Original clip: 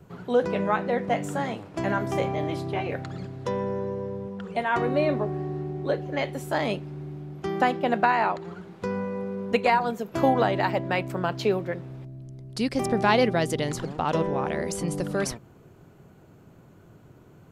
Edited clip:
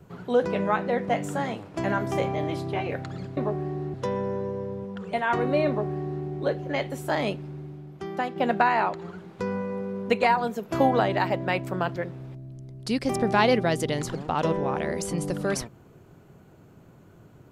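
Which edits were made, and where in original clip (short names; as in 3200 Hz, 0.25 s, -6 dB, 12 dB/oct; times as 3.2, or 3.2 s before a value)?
5.11–5.68 copy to 3.37
6.88–7.79 fade out quadratic, to -6.5 dB
11.39–11.66 cut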